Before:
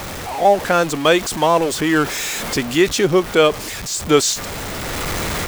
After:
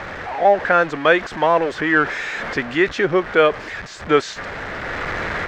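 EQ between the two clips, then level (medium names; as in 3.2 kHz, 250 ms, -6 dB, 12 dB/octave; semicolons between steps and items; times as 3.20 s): distance through air 170 m; peaking EQ 570 Hz +5.5 dB 1.5 oct; peaking EQ 1.7 kHz +13 dB 0.94 oct; -6.5 dB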